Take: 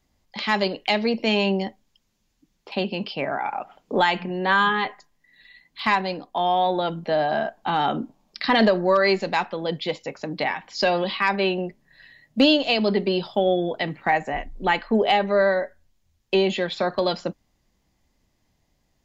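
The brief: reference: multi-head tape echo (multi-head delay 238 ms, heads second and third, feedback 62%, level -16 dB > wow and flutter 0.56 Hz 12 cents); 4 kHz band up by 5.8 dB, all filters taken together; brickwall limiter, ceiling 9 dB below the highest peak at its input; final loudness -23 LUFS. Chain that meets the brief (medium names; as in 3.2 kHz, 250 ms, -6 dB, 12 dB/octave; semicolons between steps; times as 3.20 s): peaking EQ 4 kHz +7.5 dB; peak limiter -11.5 dBFS; multi-head delay 238 ms, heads second and third, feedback 62%, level -16 dB; wow and flutter 0.56 Hz 12 cents; trim +1 dB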